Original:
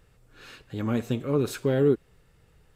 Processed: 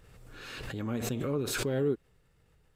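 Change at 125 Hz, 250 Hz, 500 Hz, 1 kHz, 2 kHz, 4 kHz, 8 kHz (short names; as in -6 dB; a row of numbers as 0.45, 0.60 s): -6.0, -6.5, -7.0, -4.0, +0.5, +2.5, +5.0 dB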